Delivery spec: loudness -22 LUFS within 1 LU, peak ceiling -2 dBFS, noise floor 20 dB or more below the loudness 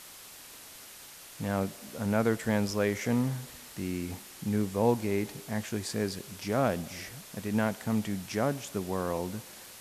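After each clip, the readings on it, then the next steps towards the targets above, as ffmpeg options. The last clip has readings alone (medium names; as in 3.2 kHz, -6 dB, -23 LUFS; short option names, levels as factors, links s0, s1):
noise floor -49 dBFS; noise floor target -52 dBFS; loudness -31.5 LUFS; peak level -12.0 dBFS; loudness target -22.0 LUFS
-> -af "afftdn=nr=6:nf=-49"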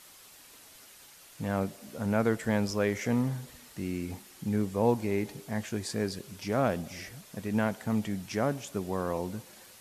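noise floor -54 dBFS; loudness -31.5 LUFS; peak level -12.0 dBFS; loudness target -22.0 LUFS
-> -af "volume=2.99"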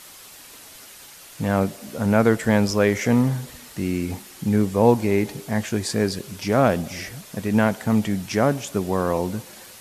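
loudness -22.0 LUFS; peak level -2.5 dBFS; noise floor -44 dBFS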